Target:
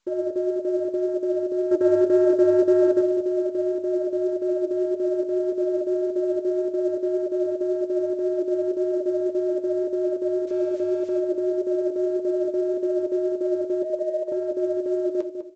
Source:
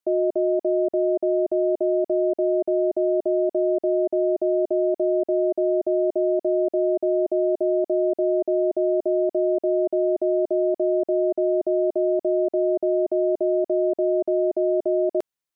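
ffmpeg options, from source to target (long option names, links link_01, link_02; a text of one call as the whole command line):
ffmpeg -i in.wav -filter_complex "[0:a]asettb=1/sr,asplit=3[link_01][link_02][link_03];[link_01]atrim=end=10.474[link_04];[link_02]atrim=start=10.47:end=11.19,asetpts=PTS-STARTPTS,afade=type=in:duration=0.004:curve=qsin,afade=type=out:start_time=0.716:duration=0.004:curve=qsin,aeval=exprs='val(0)+0.5*0.00794*sgn(val(0))':channel_layout=same[link_05];[link_03]atrim=start=11.186[link_06];[link_04][link_05]acrossfade=duration=0.004:curve1=hsin:curve2=qsin[link_07];[link_07][link_06]acrossfade=duration=0.004:curve1=qsin:curve2=hsin,asettb=1/sr,asplit=3[link_08][link_09][link_10];[link_08]atrim=end=13.824[link_11];[link_09]atrim=start=13.82:end=14.32,asetpts=PTS-STARTPTS,afade=type=in:duration=0.004:curve=qsin,afade=type=out:start_time=0.496:duration=0.004:curve=qsin,highpass=frequency=520:width=0.5412,highpass=frequency=520:width=1.3066[link_12];[link_10]atrim=start=14.316[link_13];[link_11][link_12]acrossfade=duration=0.004:curve1=hsin:curve2=qsin[link_14];[link_14][link_13]acrossfade=duration=0.004:curve1=qsin:curve2=hsin,acontrast=90,alimiter=limit=-13dB:level=0:latency=1:release=120,asettb=1/sr,asplit=3[link_15][link_16][link_17];[link_15]atrim=end=1.714[link_18];[link_16]atrim=start=1.71:end=3.01,asetpts=PTS-STARTPTS,afade=type=in:duration=0.004:curve=qsin,afade=type=out:start_time=1.296:duration=0.004:curve=qsin,acontrast=82[link_19];[link_17]atrim=start=3.006[link_20];[link_18][link_19]acrossfade=duration=0.004:curve1=hsin:curve2=qsin[link_21];[link_21][link_20]acrossfade=duration=0.004:curve1=qsin:curve2=hsin,flanger=delay=4:depth=6.2:regen=56:speed=1.8:shape=triangular,asuperstop=centerf=720:order=20:qfactor=3.5,asplit=2[link_22][link_23];[link_23]adelay=201,lowpass=frequency=810:poles=1,volume=-6.5dB,asplit=2[link_24][link_25];[link_25]adelay=201,lowpass=frequency=810:poles=1,volume=0.37,asplit=2[link_26][link_27];[link_27]adelay=201,lowpass=frequency=810:poles=1,volume=0.37,asplit=2[link_28][link_29];[link_29]adelay=201,lowpass=frequency=810:poles=1,volume=0.37[link_30];[link_22][link_24][link_26][link_28][link_30]amix=inputs=5:normalize=0,volume=-1.5dB" -ar 16000 -c:a pcm_mulaw out.wav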